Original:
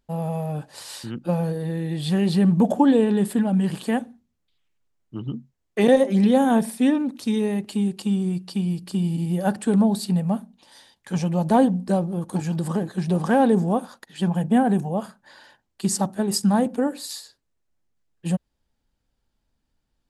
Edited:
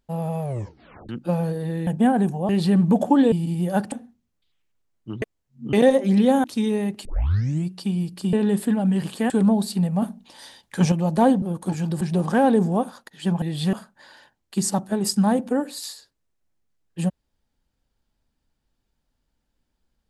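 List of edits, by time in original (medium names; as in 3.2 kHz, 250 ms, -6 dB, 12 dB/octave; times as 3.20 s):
0.42 s: tape stop 0.67 s
1.87–2.18 s: swap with 14.38–15.00 s
3.01–3.98 s: swap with 9.03–9.63 s
5.28–5.79 s: reverse
6.50–7.14 s: delete
7.75 s: tape start 0.61 s
10.35–11.25 s: gain +6 dB
11.75–12.09 s: delete
12.68–12.97 s: delete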